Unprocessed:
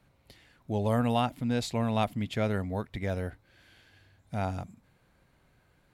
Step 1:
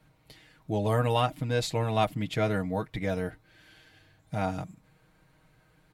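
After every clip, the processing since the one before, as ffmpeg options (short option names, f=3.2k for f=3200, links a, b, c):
-af "aecho=1:1:6.4:0.75,volume=1dB"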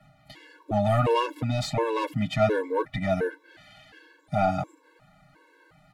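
-filter_complex "[0:a]bass=f=250:g=3,treble=f=4k:g=4,asplit=2[a][b];[b]highpass=f=720:p=1,volume=18dB,asoftclip=type=tanh:threshold=-12.5dB[c];[a][c]amix=inputs=2:normalize=0,lowpass=f=1.2k:p=1,volume=-6dB,afftfilt=real='re*gt(sin(2*PI*1.4*pts/sr)*(1-2*mod(floor(b*sr/1024/290),2)),0)':imag='im*gt(sin(2*PI*1.4*pts/sr)*(1-2*mod(floor(b*sr/1024/290),2)),0)':win_size=1024:overlap=0.75,volume=3dB"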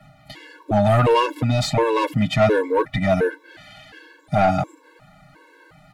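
-af "aeval=exprs='0.316*sin(PI/2*1.58*val(0)/0.316)':c=same"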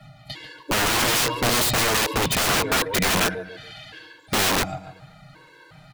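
-af "equalizer=f=125:t=o:w=1:g=6,equalizer=f=250:t=o:w=1:g=-3,equalizer=f=4k:t=o:w=1:g=7,aecho=1:1:142|284|426:0.224|0.0761|0.0259,aeval=exprs='(mod(6.31*val(0)+1,2)-1)/6.31':c=same"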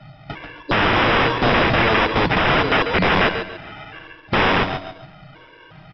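-filter_complex "[0:a]acrusher=samples=10:mix=1:aa=0.000001,asplit=2[a][b];[b]aecho=0:1:139|278|417:0.316|0.0791|0.0198[c];[a][c]amix=inputs=2:normalize=0,aresample=11025,aresample=44100,volume=4.5dB"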